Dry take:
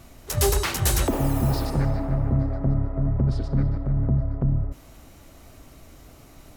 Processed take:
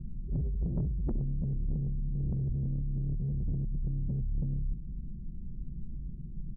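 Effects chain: 1.65–3.83 s: chunks repeated in reverse 166 ms, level -3 dB; inverse Chebyshev low-pass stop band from 1.2 kHz, stop band 80 dB; comb 5.4 ms, depth 96%; peak limiter -17.5 dBFS, peak gain reduction 8 dB; compressor with a negative ratio -30 dBFS, ratio -1; saturation -28.5 dBFS, distortion -13 dB; trim +2.5 dB

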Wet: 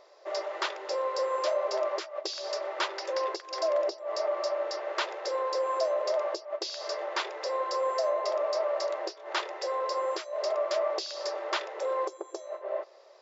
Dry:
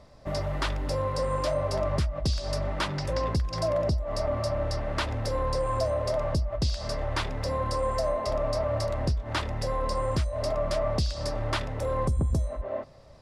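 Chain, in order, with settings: brick-wall FIR band-pass 330–7500 Hz

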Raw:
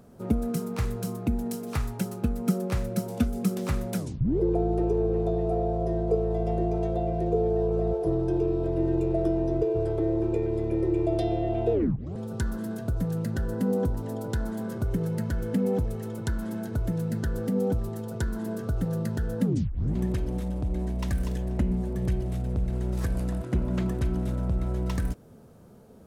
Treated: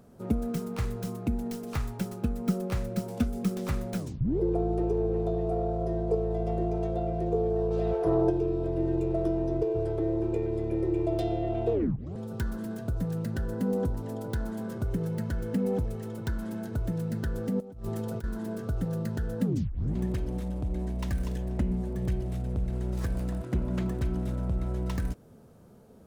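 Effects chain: tracing distortion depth 0.2 ms; 7.70–8.29 s: peaking EQ 5.1 kHz -> 640 Hz +12.5 dB 2.2 oct; 17.60–18.24 s: compressor with a negative ratio -32 dBFS, ratio -0.5; trim -2.5 dB

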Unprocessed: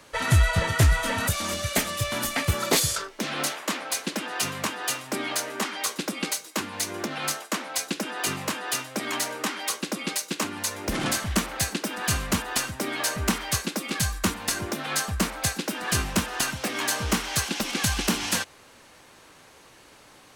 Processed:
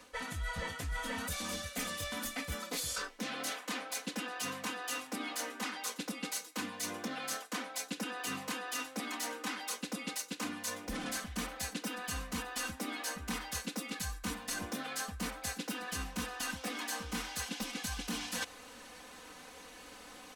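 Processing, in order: comb 4 ms, depth 96%; reverse; compression 10:1, threshold -33 dBFS, peak gain reduction 20.5 dB; reverse; trim -2.5 dB

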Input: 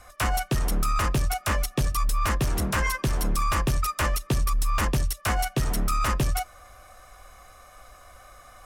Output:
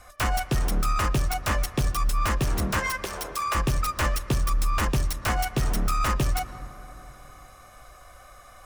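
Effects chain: tracing distortion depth 0.044 ms; 2.79–3.55 s: steep high-pass 370 Hz; on a send: reverberation RT60 3.9 s, pre-delay 101 ms, DRR 14.5 dB

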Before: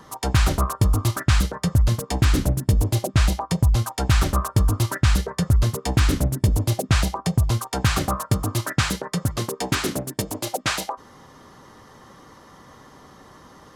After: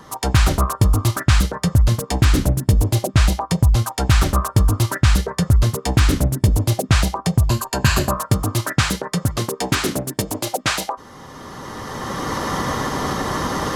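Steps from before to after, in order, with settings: recorder AGC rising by 14 dB/s; 7.49–8.16 s: rippled EQ curve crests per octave 1.4, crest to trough 8 dB; trim +3.5 dB

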